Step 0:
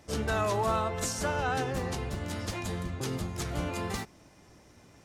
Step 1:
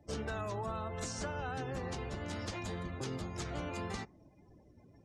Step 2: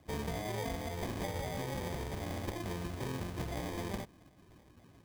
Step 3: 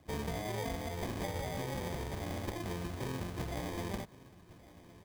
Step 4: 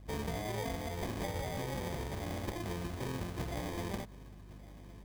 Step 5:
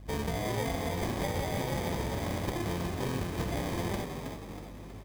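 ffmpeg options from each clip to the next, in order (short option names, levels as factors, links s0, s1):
-filter_complex "[0:a]acrossover=split=250|7900[s0][s1][s2];[s0]acompressor=threshold=0.0112:ratio=4[s3];[s1]acompressor=threshold=0.0141:ratio=4[s4];[s2]acompressor=threshold=0.00112:ratio=4[s5];[s3][s4][s5]amix=inputs=3:normalize=0,afftdn=nr=22:nf=-54,volume=0.794"
-af "highshelf=f=7300:g=7,acrusher=samples=32:mix=1:aa=0.000001,volume=1.12"
-af "aecho=1:1:1112:0.1"
-af "aeval=exprs='val(0)+0.00282*(sin(2*PI*50*n/s)+sin(2*PI*2*50*n/s)/2+sin(2*PI*3*50*n/s)/3+sin(2*PI*4*50*n/s)/4+sin(2*PI*5*50*n/s)/5)':c=same"
-filter_complex "[0:a]asplit=6[s0][s1][s2][s3][s4][s5];[s1]adelay=320,afreqshift=55,volume=0.473[s6];[s2]adelay=640,afreqshift=110,volume=0.214[s7];[s3]adelay=960,afreqshift=165,volume=0.0955[s8];[s4]adelay=1280,afreqshift=220,volume=0.0432[s9];[s5]adelay=1600,afreqshift=275,volume=0.0195[s10];[s0][s6][s7][s8][s9][s10]amix=inputs=6:normalize=0,volume=1.68"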